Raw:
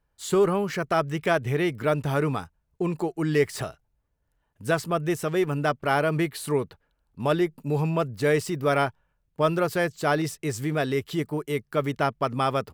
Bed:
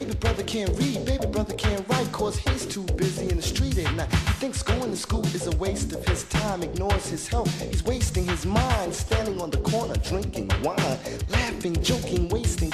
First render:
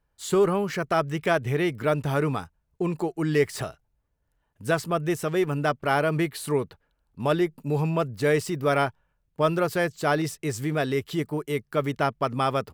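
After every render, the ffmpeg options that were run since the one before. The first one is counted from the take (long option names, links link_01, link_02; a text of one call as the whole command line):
ffmpeg -i in.wav -af anull out.wav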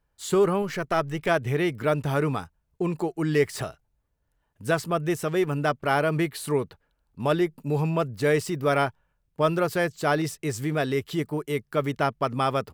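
ffmpeg -i in.wav -filter_complex "[0:a]asettb=1/sr,asplit=3[link_01][link_02][link_03];[link_01]atrim=end=0.624[link_04];[link_02]atrim=start=0.62:end=1.29,asetpts=PTS-STARTPTS,afade=type=in:duration=0.004:curve=qsin,afade=type=out:start_time=0.666:duration=0.004:curve=qsin,aeval=exprs='if(lt(val(0),0),0.708*val(0),val(0))':channel_layout=same[link_05];[link_03]atrim=start=1.286[link_06];[link_04][link_05]acrossfade=duration=0.004:curve1=hsin:curve2=qsin[link_07];[link_07][link_06]acrossfade=duration=0.004:curve1=qsin:curve2=hsin" out.wav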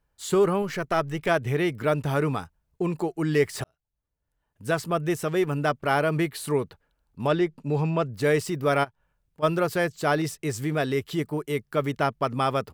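ffmpeg -i in.wav -filter_complex "[0:a]asettb=1/sr,asplit=3[link_01][link_02][link_03];[link_01]atrim=end=7.274[link_04];[link_02]atrim=start=7.27:end=8.08,asetpts=PTS-STARTPTS,afade=type=in:duration=0.004:curve=qsin,afade=type=out:start_time=0.806:duration=0.004:curve=qsin,lowpass=6400[link_05];[link_03]atrim=start=8.076[link_06];[link_04][link_05]acrossfade=duration=0.004:curve1=hsin:curve2=qsin[link_07];[link_07][link_06]acrossfade=duration=0.004:curve1=qsin:curve2=hsin,asplit=3[link_08][link_09][link_10];[link_08]afade=type=out:start_time=8.83:duration=0.02[link_11];[link_09]acompressor=threshold=-54dB:ratio=2:attack=3.2:release=140:knee=1:detection=peak,afade=type=in:start_time=8.83:duration=0.02,afade=type=out:start_time=9.42:duration=0.02[link_12];[link_10]afade=type=in:start_time=9.42:duration=0.02[link_13];[link_11][link_12][link_13]amix=inputs=3:normalize=0,asplit=2[link_14][link_15];[link_14]atrim=end=3.64,asetpts=PTS-STARTPTS,afade=type=out:start_time=3.636:duration=0.004:curve=hsin[link_16];[link_15]atrim=start=3.64,asetpts=PTS-STARTPTS,afade=type=in:duration=1.27[link_17];[link_16][link_17]concat=n=2:v=0:a=1" out.wav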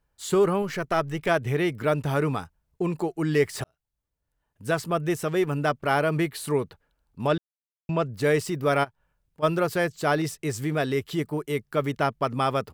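ffmpeg -i in.wav -filter_complex "[0:a]asplit=3[link_01][link_02][link_03];[link_01]atrim=end=7.38,asetpts=PTS-STARTPTS,afade=type=out:start_time=7.376:duration=0.004:curve=hsin[link_04];[link_02]atrim=start=7.38:end=7.89,asetpts=PTS-STARTPTS,volume=0[link_05];[link_03]atrim=start=7.89,asetpts=PTS-STARTPTS,afade=type=in:duration=0.004:curve=hsin[link_06];[link_04][link_05][link_06]concat=n=3:v=0:a=1" out.wav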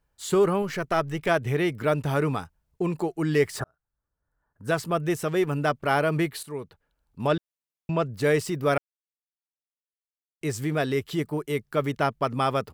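ffmpeg -i in.wav -filter_complex "[0:a]asplit=3[link_01][link_02][link_03];[link_01]afade=type=out:start_time=3.58:duration=0.02[link_04];[link_02]highshelf=frequency=2000:width_type=q:width=3:gain=-9.5,afade=type=in:start_time=3.58:duration=0.02,afade=type=out:start_time=4.67:duration=0.02[link_05];[link_03]afade=type=in:start_time=4.67:duration=0.02[link_06];[link_04][link_05][link_06]amix=inputs=3:normalize=0,asplit=4[link_07][link_08][link_09][link_10];[link_07]atrim=end=6.43,asetpts=PTS-STARTPTS,afade=type=out:start_time=6.426:duration=0.004:curve=hsin:silence=0.199526[link_11];[link_08]atrim=start=6.43:end=8.78,asetpts=PTS-STARTPTS,afade=type=in:duration=0.78:silence=0.199526,afade=type=out:start_time=2.346:duration=0.004:curve=hsin[link_12];[link_09]atrim=start=8.78:end=10.41,asetpts=PTS-STARTPTS,volume=0[link_13];[link_10]atrim=start=10.41,asetpts=PTS-STARTPTS,afade=type=in:duration=0.004:curve=hsin[link_14];[link_11][link_12][link_13][link_14]concat=n=4:v=0:a=1" out.wav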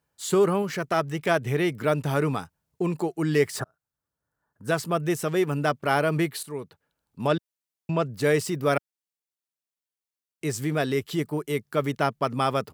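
ffmpeg -i in.wav -af "highpass=120,bass=frequency=250:gain=2,treble=frequency=4000:gain=3" out.wav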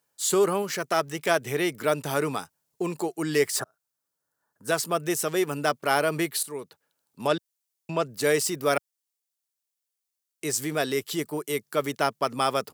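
ffmpeg -i in.wav -af "highpass=110,bass=frequency=250:gain=-8,treble=frequency=4000:gain=8" out.wav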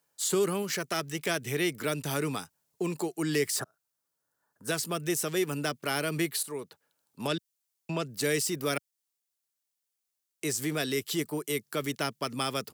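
ffmpeg -i in.wav -filter_complex "[0:a]acrossover=split=360|1700[link_01][link_02][link_03];[link_02]acompressor=threshold=-38dB:ratio=4[link_04];[link_03]alimiter=limit=-20dB:level=0:latency=1:release=72[link_05];[link_01][link_04][link_05]amix=inputs=3:normalize=0" out.wav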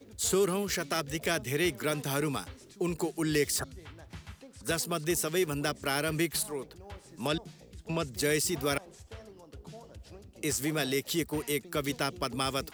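ffmpeg -i in.wav -i bed.wav -filter_complex "[1:a]volume=-23dB[link_01];[0:a][link_01]amix=inputs=2:normalize=0" out.wav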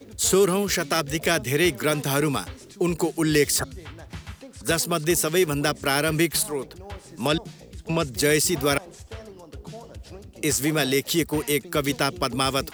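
ffmpeg -i in.wav -af "volume=8dB" out.wav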